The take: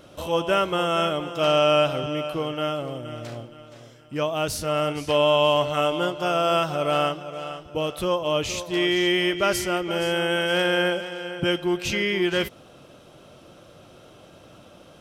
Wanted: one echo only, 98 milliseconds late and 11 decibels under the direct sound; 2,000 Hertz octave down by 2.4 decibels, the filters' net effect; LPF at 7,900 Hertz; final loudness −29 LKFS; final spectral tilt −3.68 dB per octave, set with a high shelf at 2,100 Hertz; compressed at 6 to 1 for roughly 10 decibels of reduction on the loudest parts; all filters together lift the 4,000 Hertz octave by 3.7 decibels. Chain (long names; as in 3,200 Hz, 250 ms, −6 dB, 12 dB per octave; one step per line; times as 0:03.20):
low-pass filter 7,900 Hz
parametric band 2,000 Hz −8.5 dB
high-shelf EQ 2,100 Hz +5 dB
parametric band 4,000 Hz +5 dB
downward compressor 6 to 1, threshold −26 dBFS
single-tap delay 98 ms −11 dB